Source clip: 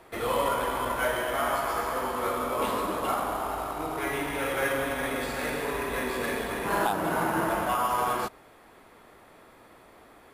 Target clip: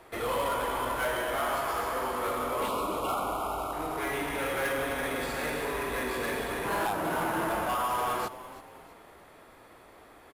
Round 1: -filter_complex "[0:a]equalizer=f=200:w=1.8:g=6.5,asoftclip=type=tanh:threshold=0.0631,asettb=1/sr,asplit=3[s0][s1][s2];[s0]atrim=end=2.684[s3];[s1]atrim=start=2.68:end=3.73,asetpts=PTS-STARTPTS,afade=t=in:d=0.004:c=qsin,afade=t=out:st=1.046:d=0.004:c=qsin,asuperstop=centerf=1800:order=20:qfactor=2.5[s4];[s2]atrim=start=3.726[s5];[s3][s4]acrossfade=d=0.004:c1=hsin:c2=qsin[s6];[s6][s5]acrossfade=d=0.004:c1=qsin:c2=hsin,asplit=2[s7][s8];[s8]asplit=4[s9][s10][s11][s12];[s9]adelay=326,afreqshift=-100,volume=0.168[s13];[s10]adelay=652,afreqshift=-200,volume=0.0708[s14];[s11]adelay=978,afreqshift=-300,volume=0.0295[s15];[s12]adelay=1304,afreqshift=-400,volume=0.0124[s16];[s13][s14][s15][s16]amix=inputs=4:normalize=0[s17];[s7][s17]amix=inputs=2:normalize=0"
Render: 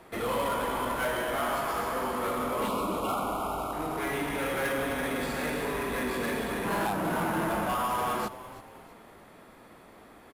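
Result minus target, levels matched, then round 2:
250 Hz band +3.5 dB
-filter_complex "[0:a]equalizer=f=200:w=1.8:g=-3.5,asoftclip=type=tanh:threshold=0.0631,asettb=1/sr,asplit=3[s0][s1][s2];[s0]atrim=end=2.684[s3];[s1]atrim=start=2.68:end=3.73,asetpts=PTS-STARTPTS,afade=t=in:d=0.004:c=qsin,afade=t=out:st=1.046:d=0.004:c=qsin,asuperstop=centerf=1800:order=20:qfactor=2.5[s4];[s2]atrim=start=3.726[s5];[s3][s4]acrossfade=d=0.004:c1=hsin:c2=qsin[s6];[s6][s5]acrossfade=d=0.004:c1=qsin:c2=hsin,asplit=2[s7][s8];[s8]asplit=4[s9][s10][s11][s12];[s9]adelay=326,afreqshift=-100,volume=0.168[s13];[s10]adelay=652,afreqshift=-200,volume=0.0708[s14];[s11]adelay=978,afreqshift=-300,volume=0.0295[s15];[s12]adelay=1304,afreqshift=-400,volume=0.0124[s16];[s13][s14][s15][s16]amix=inputs=4:normalize=0[s17];[s7][s17]amix=inputs=2:normalize=0"

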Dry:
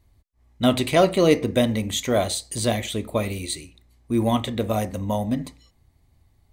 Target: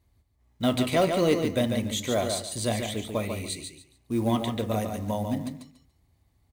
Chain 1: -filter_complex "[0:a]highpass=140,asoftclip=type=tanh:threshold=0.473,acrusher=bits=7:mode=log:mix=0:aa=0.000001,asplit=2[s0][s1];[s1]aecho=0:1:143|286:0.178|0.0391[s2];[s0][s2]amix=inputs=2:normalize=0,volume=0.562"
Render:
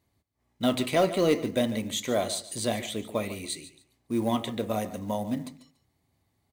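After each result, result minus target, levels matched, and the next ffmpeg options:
echo-to-direct -9 dB; 125 Hz band -4.5 dB
-filter_complex "[0:a]highpass=140,asoftclip=type=tanh:threshold=0.473,acrusher=bits=7:mode=log:mix=0:aa=0.000001,asplit=2[s0][s1];[s1]aecho=0:1:143|286|429:0.501|0.11|0.0243[s2];[s0][s2]amix=inputs=2:normalize=0,volume=0.562"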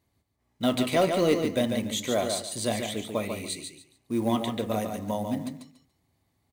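125 Hz band -4.0 dB
-filter_complex "[0:a]highpass=45,asoftclip=type=tanh:threshold=0.473,acrusher=bits=7:mode=log:mix=0:aa=0.000001,asplit=2[s0][s1];[s1]aecho=0:1:143|286|429:0.501|0.11|0.0243[s2];[s0][s2]amix=inputs=2:normalize=0,volume=0.562"

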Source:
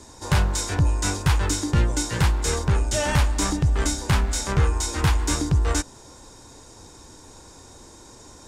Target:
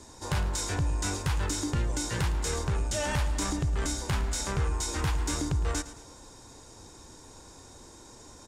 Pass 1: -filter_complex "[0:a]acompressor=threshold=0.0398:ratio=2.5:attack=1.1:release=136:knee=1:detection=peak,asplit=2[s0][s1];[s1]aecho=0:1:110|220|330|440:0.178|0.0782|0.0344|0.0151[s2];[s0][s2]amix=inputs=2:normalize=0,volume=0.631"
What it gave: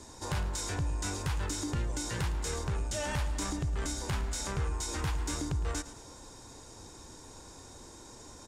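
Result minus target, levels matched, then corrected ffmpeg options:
compression: peak gain reduction +4 dB
-filter_complex "[0:a]acompressor=threshold=0.0891:ratio=2.5:attack=1.1:release=136:knee=1:detection=peak,asplit=2[s0][s1];[s1]aecho=0:1:110|220|330|440:0.178|0.0782|0.0344|0.0151[s2];[s0][s2]amix=inputs=2:normalize=0,volume=0.631"

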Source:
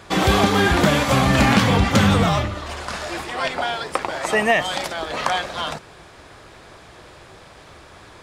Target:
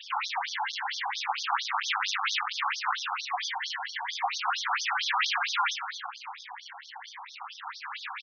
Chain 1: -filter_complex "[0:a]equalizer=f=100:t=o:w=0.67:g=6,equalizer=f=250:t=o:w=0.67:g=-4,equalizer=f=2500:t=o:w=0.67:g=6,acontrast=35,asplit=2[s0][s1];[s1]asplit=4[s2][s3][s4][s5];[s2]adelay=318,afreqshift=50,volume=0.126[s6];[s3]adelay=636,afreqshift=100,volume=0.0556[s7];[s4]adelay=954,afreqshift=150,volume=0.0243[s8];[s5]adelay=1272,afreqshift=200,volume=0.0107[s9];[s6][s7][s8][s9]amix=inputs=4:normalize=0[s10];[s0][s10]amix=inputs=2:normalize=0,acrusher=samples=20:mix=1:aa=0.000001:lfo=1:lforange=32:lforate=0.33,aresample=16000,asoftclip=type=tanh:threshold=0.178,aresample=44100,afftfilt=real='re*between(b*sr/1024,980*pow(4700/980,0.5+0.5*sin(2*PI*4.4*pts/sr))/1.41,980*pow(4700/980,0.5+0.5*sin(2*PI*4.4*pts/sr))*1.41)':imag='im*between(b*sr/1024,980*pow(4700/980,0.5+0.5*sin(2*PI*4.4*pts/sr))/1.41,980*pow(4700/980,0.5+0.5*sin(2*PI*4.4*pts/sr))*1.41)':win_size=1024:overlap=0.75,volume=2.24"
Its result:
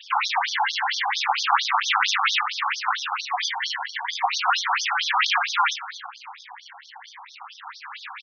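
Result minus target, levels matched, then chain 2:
saturation: distortion -5 dB
-filter_complex "[0:a]equalizer=f=100:t=o:w=0.67:g=6,equalizer=f=250:t=o:w=0.67:g=-4,equalizer=f=2500:t=o:w=0.67:g=6,acontrast=35,asplit=2[s0][s1];[s1]asplit=4[s2][s3][s4][s5];[s2]adelay=318,afreqshift=50,volume=0.126[s6];[s3]adelay=636,afreqshift=100,volume=0.0556[s7];[s4]adelay=954,afreqshift=150,volume=0.0243[s8];[s5]adelay=1272,afreqshift=200,volume=0.0107[s9];[s6][s7][s8][s9]amix=inputs=4:normalize=0[s10];[s0][s10]amix=inputs=2:normalize=0,acrusher=samples=20:mix=1:aa=0.000001:lfo=1:lforange=32:lforate=0.33,aresample=16000,asoftclip=type=tanh:threshold=0.0531,aresample=44100,afftfilt=real='re*between(b*sr/1024,980*pow(4700/980,0.5+0.5*sin(2*PI*4.4*pts/sr))/1.41,980*pow(4700/980,0.5+0.5*sin(2*PI*4.4*pts/sr))*1.41)':imag='im*between(b*sr/1024,980*pow(4700/980,0.5+0.5*sin(2*PI*4.4*pts/sr))/1.41,980*pow(4700/980,0.5+0.5*sin(2*PI*4.4*pts/sr))*1.41)':win_size=1024:overlap=0.75,volume=2.24"

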